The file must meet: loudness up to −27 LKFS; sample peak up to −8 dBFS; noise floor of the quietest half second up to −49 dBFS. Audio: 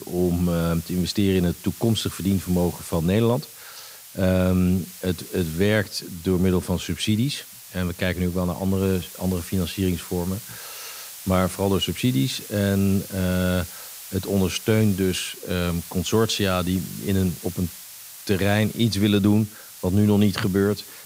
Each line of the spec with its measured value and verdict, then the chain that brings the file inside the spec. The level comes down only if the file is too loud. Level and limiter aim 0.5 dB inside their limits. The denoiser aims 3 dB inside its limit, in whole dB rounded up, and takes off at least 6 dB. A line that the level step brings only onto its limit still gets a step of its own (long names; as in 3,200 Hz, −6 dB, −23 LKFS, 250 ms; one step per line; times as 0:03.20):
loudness −23.5 LKFS: out of spec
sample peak −7.0 dBFS: out of spec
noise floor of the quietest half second −42 dBFS: out of spec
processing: broadband denoise 6 dB, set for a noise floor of −42 dBFS
level −4 dB